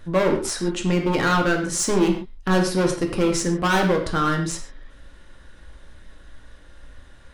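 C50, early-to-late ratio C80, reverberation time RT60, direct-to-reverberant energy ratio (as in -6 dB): 7.0 dB, 10.0 dB, not exponential, 2.0 dB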